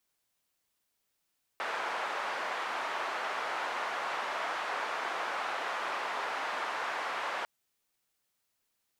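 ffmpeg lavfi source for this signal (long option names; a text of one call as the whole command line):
ffmpeg -f lavfi -i "anoisesrc=color=white:duration=5.85:sample_rate=44100:seed=1,highpass=frequency=850,lowpass=frequency=1100,volume=-13.1dB" out.wav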